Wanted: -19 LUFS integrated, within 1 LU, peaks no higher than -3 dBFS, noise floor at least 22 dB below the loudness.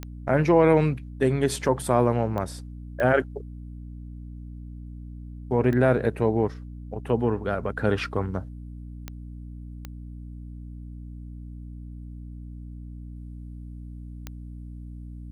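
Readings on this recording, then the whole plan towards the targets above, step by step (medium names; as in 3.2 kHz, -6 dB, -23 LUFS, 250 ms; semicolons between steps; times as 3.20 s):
clicks found 7; hum 60 Hz; highest harmonic 300 Hz; hum level -36 dBFS; loudness -24.0 LUFS; peak level -6.5 dBFS; loudness target -19.0 LUFS
-> de-click; hum notches 60/120/180/240/300 Hz; trim +5 dB; peak limiter -3 dBFS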